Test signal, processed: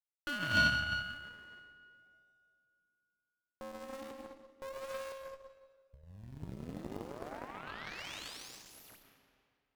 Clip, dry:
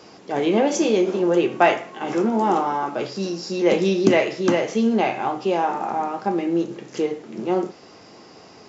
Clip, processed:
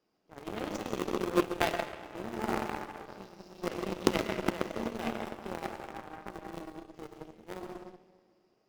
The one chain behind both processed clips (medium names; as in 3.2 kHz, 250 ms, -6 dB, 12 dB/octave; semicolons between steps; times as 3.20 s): median filter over 5 samples; peaking EQ 73 Hz -8 dB 0.26 oct; in parallel at -9 dB: decimation with a swept rate 39×, swing 100% 0.34 Hz; on the sum: algorithmic reverb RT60 2.1 s, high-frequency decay 0.85×, pre-delay 70 ms, DRR -1 dB; Chebyshev shaper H 2 -16 dB, 3 -10 dB, 4 -23 dB, 8 -44 dB, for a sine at -0.5 dBFS; trim -7.5 dB